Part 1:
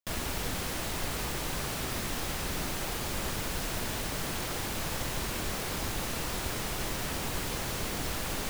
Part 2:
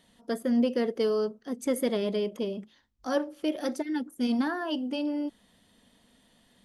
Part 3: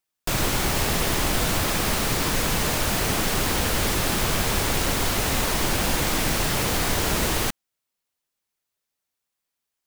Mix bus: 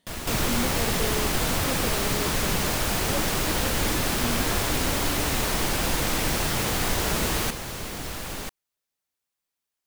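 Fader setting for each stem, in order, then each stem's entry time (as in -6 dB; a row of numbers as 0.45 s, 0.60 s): 0.0 dB, -6.5 dB, -2.5 dB; 0.00 s, 0.00 s, 0.00 s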